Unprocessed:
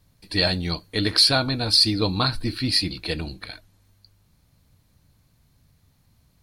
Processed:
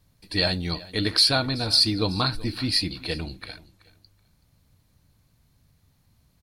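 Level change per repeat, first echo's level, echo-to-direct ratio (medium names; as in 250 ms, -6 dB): -14.0 dB, -20.0 dB, -20.0 dB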